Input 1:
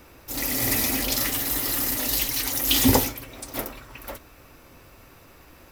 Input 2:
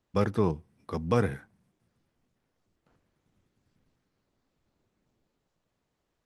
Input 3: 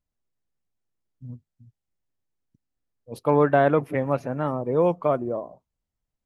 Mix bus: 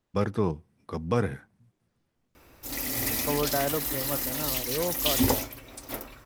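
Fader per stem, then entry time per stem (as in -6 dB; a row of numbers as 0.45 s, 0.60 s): -5.5 dB, -0.5 dB, -10.0 dB; 2.35 s, 0.00 s, 0.00 s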